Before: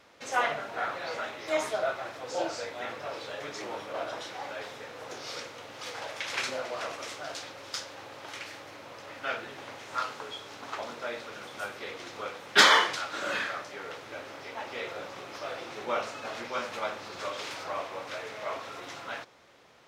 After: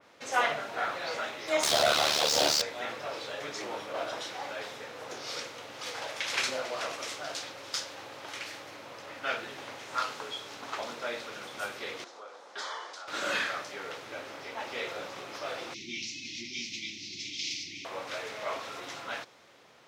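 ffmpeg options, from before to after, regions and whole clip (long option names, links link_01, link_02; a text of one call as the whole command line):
ffmpeg -i in.wav -filter_complex "[0:a]asettb=1/sr,asplit=3[link_01][link_02][link_03];[link_01]atrim=end=1.634[link_04];[link_02]atrim=start=1.63:end=2.62,asetpts=PTS-STARTPTS,afade=type=in:duration=0.004:curve=qsin,afade=type=out:start_time=0.986:duration=0.004:curve=qsin,highshelf=frequency=2800:width_type=q:width=1.5:gain=14,asplit=2[link_05][link_06];[link_06]highpass=frequency=720:poles=1,volume=33dB,asoftclip=type=tanh:threshold=-13.5dB[link_07];[link_05][link_07]amix=inputs=2:normalize=0,lowpass=frequency=1900:poles=1,volume=-6dB,aeval=exprs='val(0)*sin(2*PI*37*n/s)':channel_layout=same[link_08];[link_03]atrim=start=2.616[link_09];[link_04][link_08]acrossfade=duration=0.004:curve1=hsin:curve2=qsin[link_10];[link_10][link_09]acrossfade=duration=0.004:curve1=qsin:curve2=hsin,asettb=1/sr,asplit=3[link_11][link_12][link_13];[link_11]atrim=end=12.044[link_14];[link_12]atrim=start=12.04:end=13.08,asetpts=PTS-STARTPTS,afade=type=in:duration=0.004:curve=qsin,afade=type=out:start_time=1.036:duration=0.004:curve=qsin,equalizer=frequency=2500:width=0.85:gain=-14,acompressor=threshold=-41dB:ratio=2.5:attack=3.2:release=140:knee=1:detection=peak,highpass=560,lowpass=5900[link_15];[link_13]atrim=start=13.076[link_16];[link_14][link_15]acrossfade=duration=0.004:curve1=hsin:curve2=qsin[link_17];[link_17][link_16]acrossfade=duration=0.004:curve1=qsin:curve2=hsin,asettb=1/sr,asplit=3[link_18][link_19][link_20];[link_18]atrim=end=15.744[link_21];[link_19]atrim=start=15.74:end=17.85,asetpts=PTS-STARTPTS,afade=type=in:duration=0.004:curve=qsin,afade=type=out:start_time=2.106:duration=0.004:curve=qsin,asuperstop=centerf=860:order=20:qfactor=0.5,highshelf=frequency=7600:width_type=q:width=3:gain=-10.5[link_22];[link_20]atrim=start=17.846[link_23];[link_21][link_22]acrossfade=duration=0.004:curve1=hsin:curve2=qsin[link_24];[link_24][link_23]acrossfade=duration=0.004:curve1=qsin:curve2=hsin,highpass=97,adynamicequalizer=threshold=0.00794:dfrequency=2400:dqfactor=0.7:tfrequency=2400:tqfactor=0.7:attack=5:release=100:ratio=0.375:range=2:mode=boostabove:tftype=highshelf" out.wav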